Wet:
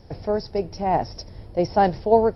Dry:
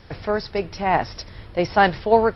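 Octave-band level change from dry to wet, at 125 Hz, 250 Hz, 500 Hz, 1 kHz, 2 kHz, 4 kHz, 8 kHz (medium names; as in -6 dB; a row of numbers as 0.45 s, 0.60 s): 0.0 dB, 0.0 dB, 0.0 dB, -2.0 dB, -12.5 dB, -6.5 dB, no reading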